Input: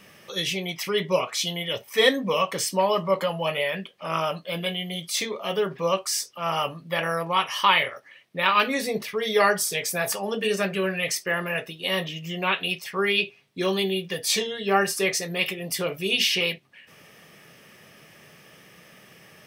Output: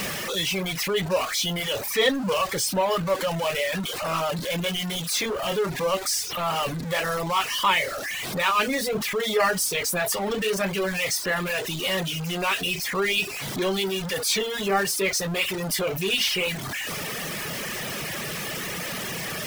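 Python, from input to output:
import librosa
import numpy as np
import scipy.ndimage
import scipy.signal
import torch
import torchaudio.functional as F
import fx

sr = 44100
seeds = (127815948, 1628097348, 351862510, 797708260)

y = x + 0.5 * 10.0 ** (-19.5 / 20.0) * np.sign(x)
y = fx.dereverb_blind(y, sr, rt60_s=0.83)
y = F.gain(torch.from_numpy(y), -4.0).numpy()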